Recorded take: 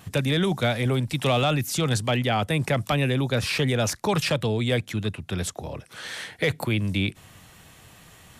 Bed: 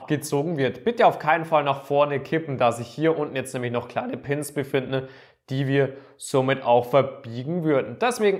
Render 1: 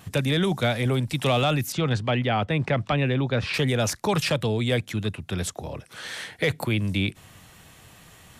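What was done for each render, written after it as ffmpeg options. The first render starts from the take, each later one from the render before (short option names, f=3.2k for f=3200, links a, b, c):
-filter_complex "[0:a]asettb=1/sr,asplit=3[a][b][c];[a]atrim=end=1.724[d];[b]atrim=start=1.72:end=3.54,asetpts=PTS-STARTPTS,afade=t=in:d=0.004:c=qsin,afade=t=out:st=1.816:d=0.004:c=qsin,lowpass=3.4k[e];[c]atrim=start=3.536[f];[d][e]acrossfade=d=0.004:c1=hsin:c2=qsin[g];[g][f]acrossfade=d=0.004:c1=qsin:c2=hsin"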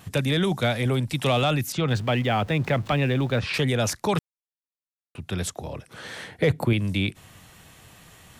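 -filter_complex "[0:a]asettb=1/sr,asplit=3[a][b][c];[a]atrim=end=1.884[d];[b]atrim=start=1.88:end=3.4,asetpts=PTS-STARTPTS,afade=t=in:d=0.004:c=qsin,afade=t=out:st=1.516:d=0.004:c=qsin,aeval=exprs='val(0)+0.5*0.01*sgn(val(0))':c=same[e];[c]atrim=start=3.396[f];[d][e]acrossfade=d=0.004:c1=hsin:c2=qsin[g];[g][f]acrossfade=d=0.004:c1=qsin:c2=hsin,asettb=1/sr,asplit=3[h][i][j];[h]atrim=end=5.874[k];[i]atrim=start=5.87:end=6.73,asetpts=PTS-STARTPTS,afade=t=in:d=0.004:c=qsin,afade=t=out:st=0.856:d=0.004:c=qsin,tiltshelf=f=1.1k:g=5.5[l];[j]atrim=start=6.726[m];[k][l]acrossfade=d=0.004:c1=hsin:c2=qsin[n];[n][m]acrossfade=d=0.004:c1=qsin:c2=hsin,asplit=3[o][p][q];[o]atrim=end=4.19,asetpts=PTS-STARTPTS,afade=t=out:st=4.186:d=0.004:c=hsin[r];[p]atrim=start=4.19:end=5.15,asetpts=PTS-STARTPTS,volume=0[s];[q]atrim=start=5.15,asetpts=PTS-STARTPTS,afade=t=in:d=0.004:c=hsin[t];[r][s][t]concat=n=3:v=0:a=1"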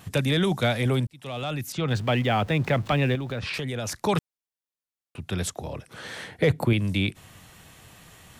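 -filter_complex "[0:a]asettb=1/sr,asplit=3[a][b][c];[a]atrim=end=3.154[d];[b]atrim=start=3.15:end=3.95,asetpts=PTS-STARTPTS,afade=t=in:d=0.004:c=qsin,afade=t=out:st=0.796:d=0.004:c=qsin,acompressor=threshold=-27dB:ratio=6:attack=3.2:release=140:knee=1:detection=peak[e];[c]atrim=start=3.946[f];[d][e]acrossfade=d=0.004:c1=hsin:c2=qsin[g];[g][f]acrossfade=d=0.004:c1=qsin:c2=hsin,asplit=2[h][i];[h]atrim=end=1.07,asetpts=PTS-STARTPTS,afade=t=out:st=1.066:d=0.004:c=hsin[j];[i]atrim=start=1.07,asetpts=PTS-STARTPTS,afade=t=in:d=1.02[k];[j][k]concat=n=2:v=0:a=1"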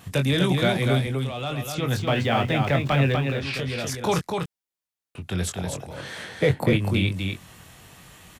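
-filter_complex "[0:a]asplit=2[a][b];[b]adelay=22,volume=-7dB[c];[a][c]amix=inputs=2:normalize=0,aecho=1:1:246:0.596"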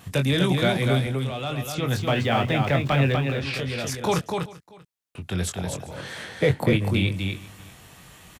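-af "aecho=1:1:391:0.0891"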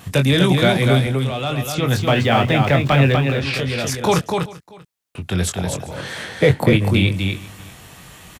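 -af "volume=6.5dB,alimiter=limit=-3dB:level=0:latency=1"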